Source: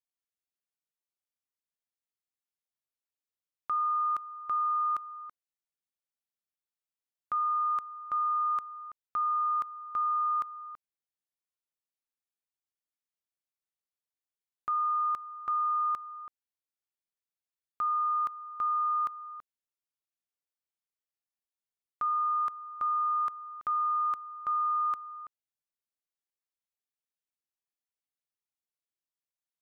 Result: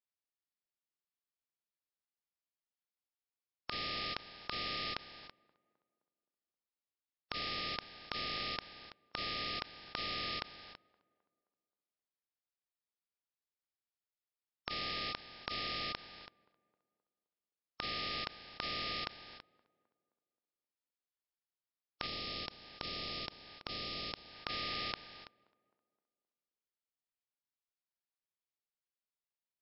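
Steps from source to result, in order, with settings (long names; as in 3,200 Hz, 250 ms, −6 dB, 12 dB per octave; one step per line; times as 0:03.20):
compressing power law on the bin magnitudes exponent 0.13
0:22.06–0:24.35: dynamic equaliser 1,600 Hz, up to −7 dB, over −50 dBFS, Q 0.84
tape delay 262 ms, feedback 50%, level −22 dB, low-pass 1,400 Hz
level −3.5 dB
MP3 64 kbit/s 12,000 Hz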